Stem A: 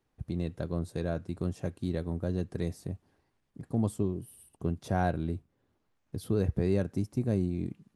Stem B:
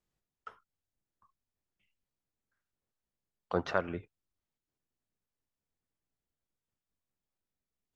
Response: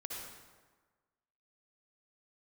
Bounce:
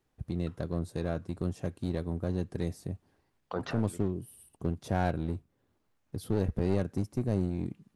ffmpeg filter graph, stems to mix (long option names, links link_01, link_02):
-filter_complex "[0:a]aeval=exprs='clip(val(0),-1,0.0237)':channel_layout=same,volume=0dB,asplit=2[link_01][link_02];[1:a]alimiter=limit=-20.5dB:level=0:latency=1:release=36,volume=0dB[link_03];[link_02]apad=whole_len=350747[link_04];[link_03][link_04]sidechaincompress=threshold=-37dB:ratio=8:attack=41:release=468[link_05];[link_01][link_05]amix=inputs=2:normalize=0"